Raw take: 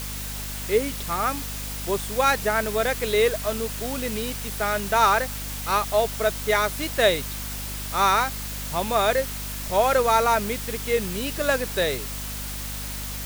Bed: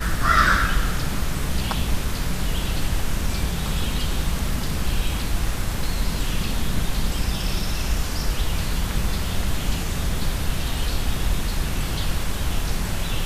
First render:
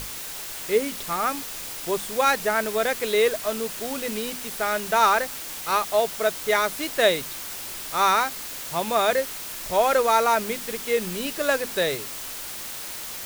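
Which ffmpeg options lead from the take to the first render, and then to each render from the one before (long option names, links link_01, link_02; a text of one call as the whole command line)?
ffmpeg -i in.wav -af "bandreject=frequency=50:width_type=h:width=6,bandreject=frequency=100:width_type=h:width=6,bandreject=frequency=150:width_type=h:width=6,bandreject=frequency=200:width_type=h:width=6,bandreject=frequency=250:width_type=h:width=6" out.wav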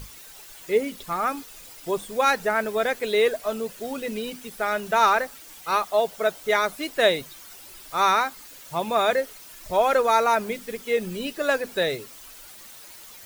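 ffmpeg -i in.wav -af "afftdn=noise_reduction=12:noise_floor=-35" out.wav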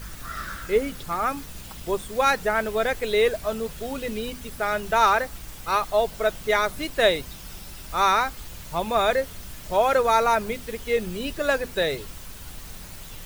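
ffmpeg -i in.wav -i bed.wav -filter_complex "[1:a]volume=-17.5dB[link_01];[0:a][link_01]amix=inputs=2:normalize=0" out.wav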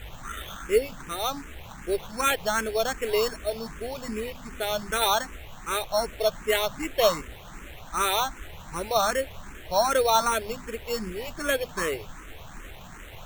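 ffmpeg -i in.wav -filter_complex "[0:a]acrusher=samples=9:mix=1:aa=0.000001,asplit=2[link_01][link_02];[link_02]afreqshift=2.6[link_03];[link_01][link_03]amix=inputs=2:normalize=1" out.wav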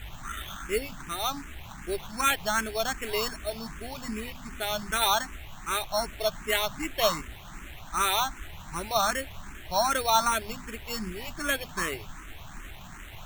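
ffmpeg -i in.wav -af "equalizer=frequency=490:width=2.7:gain=-12" out.wav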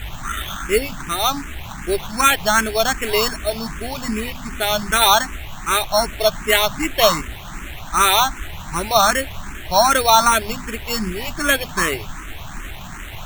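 ffmpeg -i in.wav -af "volume=11dB,alimiter=limit=-1dB:level=0:latency=1" out.wav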